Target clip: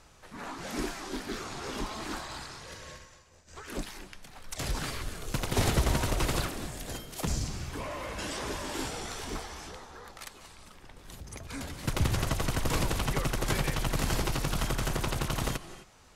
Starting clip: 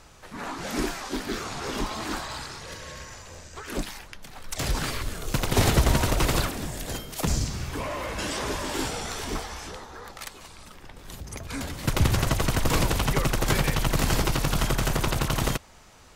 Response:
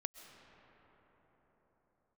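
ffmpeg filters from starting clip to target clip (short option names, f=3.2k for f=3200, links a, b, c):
-filter_complex "[0:a]asplit=3[a][b][c];[a]afade=t=out:st=2.96:d=0.02[d];[b]agate=range=-33dB:threshold=-34dB:ratio=3:detection=peak,afade=t=in:st=2.96:d=0.02,afade=t=out:st=3.47:d=0.02[e];[c]afade=t=in:st=3.47:d=0.02[f];[d][e][f]amix=inputs=3:normalize=0[g];[1:a]atrim=start_sample=2205,afade=t=out:st=0.2:d=0.01,atrim=end_sample=9261,asetrate=24696,aresample=44100[h];[g][h]afir=irnorm=-1:irlink=0,volume=-5.5dB"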